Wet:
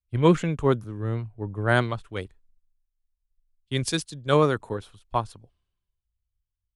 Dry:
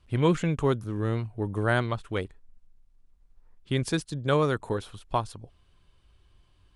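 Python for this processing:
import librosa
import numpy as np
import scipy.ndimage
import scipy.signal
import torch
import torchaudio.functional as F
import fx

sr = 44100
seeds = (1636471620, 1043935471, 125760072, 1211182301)

y = fx.band_widen(x, sr, depth_pct=100)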